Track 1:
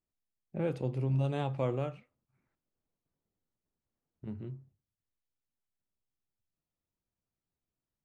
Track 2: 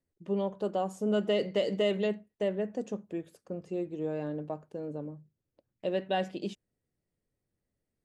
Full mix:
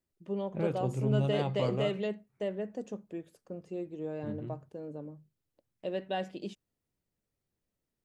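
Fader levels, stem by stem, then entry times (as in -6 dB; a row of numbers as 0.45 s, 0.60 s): +0.5 dB, -4.0 dB; 0.00 s, 0.00 s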